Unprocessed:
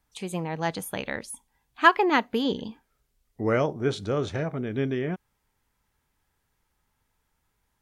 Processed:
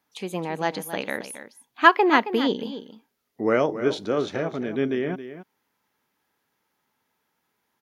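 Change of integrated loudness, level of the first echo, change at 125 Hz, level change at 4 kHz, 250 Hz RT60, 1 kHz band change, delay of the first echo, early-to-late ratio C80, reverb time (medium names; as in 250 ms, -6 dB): +3.0 dB, -12.0 dB, -5.0 dB, +2.5 dB, no reverb, +3.0 dB, 271 ms, no reverb, no reverb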